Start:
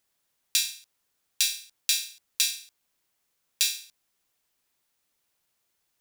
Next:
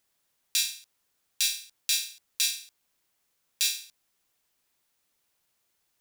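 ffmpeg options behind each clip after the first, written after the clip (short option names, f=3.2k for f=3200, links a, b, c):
-af "alimiter=level_in=7dB:limit=-1dB:release=50:level=0:latency=1,volume=-6dB"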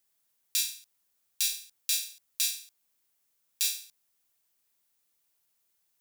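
-af "crystalizer=i=1:c=0,volume=-6.5dB"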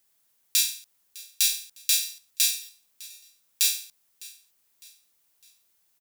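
-af "aecho=1:1:606|1212|1818:0.0891|0.0392|0.0173,volume=6dB"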